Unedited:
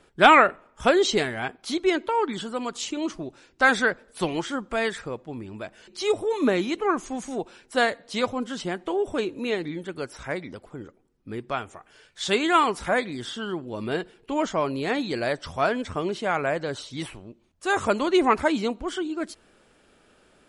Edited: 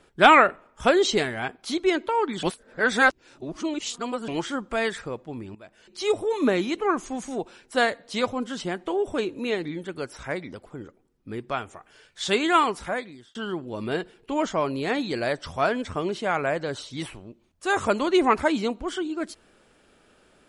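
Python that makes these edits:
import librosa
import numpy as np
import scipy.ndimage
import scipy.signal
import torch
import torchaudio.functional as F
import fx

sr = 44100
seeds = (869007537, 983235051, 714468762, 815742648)

y = fx.edit(x, sr, fx.reverse_span(start_s=2.43, length_s=1.85),
    fx.fade_in_from(start_s=5.55, length_s=0.54, floor_db=-16.5),
    fx.fade_out_span(start_s=12.58, length_s=0.77), tone=tone)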